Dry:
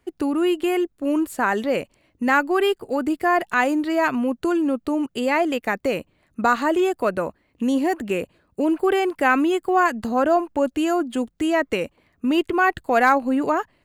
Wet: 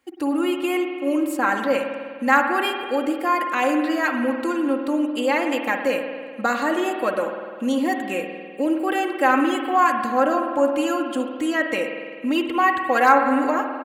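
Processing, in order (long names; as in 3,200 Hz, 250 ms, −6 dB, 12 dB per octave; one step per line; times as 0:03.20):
high-pass filter 410 Hz 6 dB per octave
comb filter 3.7 ms, depth 72%
convolution reverb RT60 1.9 s, pre-delay 50 ms, DRR 4.5 dB
level −1 dB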